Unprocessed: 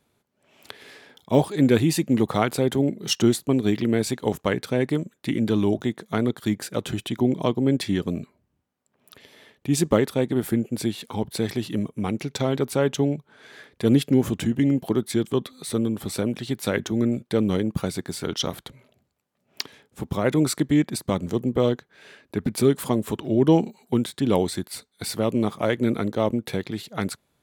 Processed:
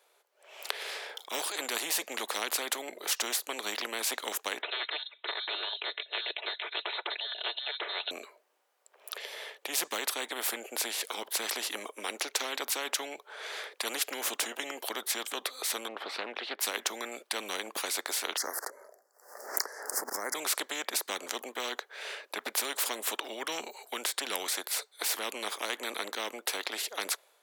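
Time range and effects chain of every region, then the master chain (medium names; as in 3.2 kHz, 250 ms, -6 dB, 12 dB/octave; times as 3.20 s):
4.62–8.11 s: comb 3.7 ms, depth 80% + frequency inversion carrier 3.9 kHz
15.88–16.61 s: distance through air 340 m + loudspeaker Doppler distortion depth 0.26 ms
18.37–20.35 s: elliptic band-stop 1.8–5 kHz + swell ahead of each attack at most 98 dB/s
whole clip: steep high-pass 450 Hz 36 dB/octave; level rider gain up to 5.5 dB; spectrum-flattening compressor 4:1; trim +2 dB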